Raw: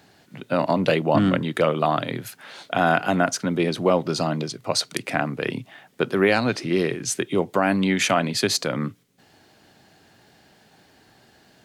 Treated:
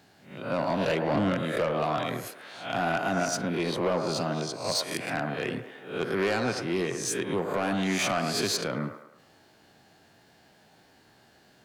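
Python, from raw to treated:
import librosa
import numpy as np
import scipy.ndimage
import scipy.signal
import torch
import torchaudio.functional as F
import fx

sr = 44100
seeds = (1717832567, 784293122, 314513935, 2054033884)

p1 = fx.spec_swells(x, sr, rise_s=0.46)
p2 = 10.0 ** (-14.5 / 20.0) * np.tanh(p1 / 10.0 ** (-14.5 / 20.0))
p3 = p2 + fx.echo_wet_bandpass(p2, sr, ms=107, feedback_pct=44, hz=850.0, wet_db=-5, dry=0)
y = F.gain(torch.from_numpy(p3), -6.0).numpy()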